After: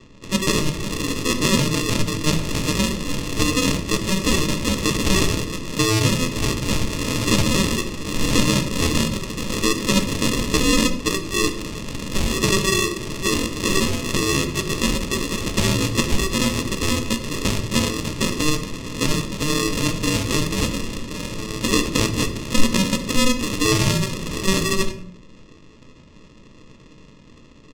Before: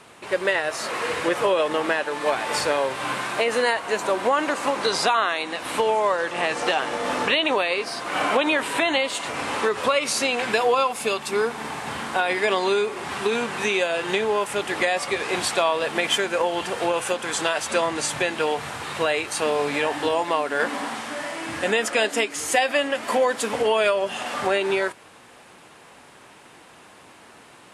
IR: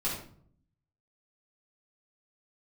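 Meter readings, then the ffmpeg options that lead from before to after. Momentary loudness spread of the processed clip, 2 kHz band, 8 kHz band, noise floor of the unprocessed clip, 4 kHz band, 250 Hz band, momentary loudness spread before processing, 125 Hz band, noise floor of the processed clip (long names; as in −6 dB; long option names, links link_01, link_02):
7 LU, −2.0 dB, +7.5 dB, −49 dBFS, +4.5 dB, +10.0 dB, 6 LU, +19.5 dB, −46 dBFS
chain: -filter_complex "[0:a]highpass=frequency=140:width=0.5412,highpass=frequency=140:width=1.3066,bandreject=frequency=290.2:width_type=h:width=4,bandreject=frequency=580.4:width_type=h:width=4,aresample=16000,acrusher=samples=21:mix=1:aa=0.000001,aresample=44100,adynamicsmooth=sensitivity=6:basefreq=3300,aexciter=amount=3.7:drive=3.9:freq=2300,asplit=2[link_01][link_02];[1:a]atrim=start_sample=2205[link_03];[link_02][link_03]afir=irnorm=-1:irlink=0,volume=-10.5dB[link_04];[link_01][link_04]amix=inputs=2:normalize=0,volume=-2dB"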